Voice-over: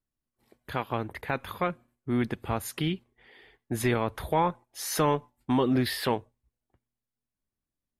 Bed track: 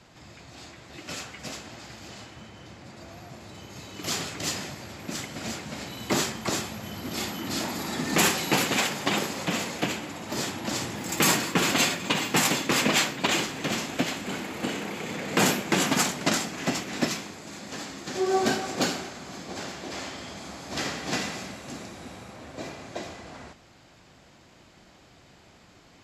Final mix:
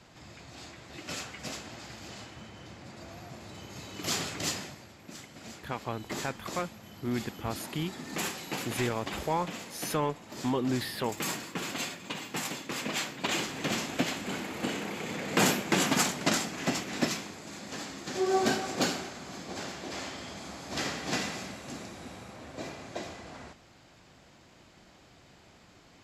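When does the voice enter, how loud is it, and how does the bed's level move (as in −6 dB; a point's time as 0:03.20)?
4.95 s, −5.0 dB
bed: 0:04.45 −1.5 dB
0:04.95 −12 dB
0:12.79 −12 dB
0:13.60 −2.5 dB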